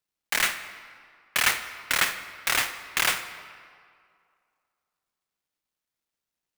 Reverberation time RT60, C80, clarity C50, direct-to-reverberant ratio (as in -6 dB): 2.2 s, 12.0 dB, 10.5 dB, 10.0 dB